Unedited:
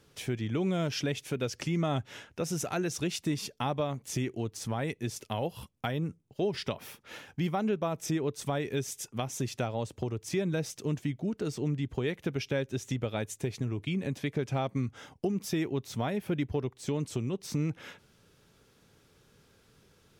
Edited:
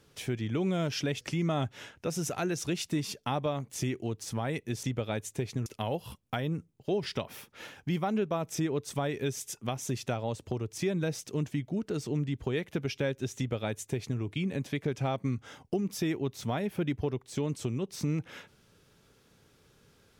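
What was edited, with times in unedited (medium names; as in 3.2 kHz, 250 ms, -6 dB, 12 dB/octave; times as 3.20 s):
1.21–1.55 s: delete
12.88–13.71 s: copy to 5.17 s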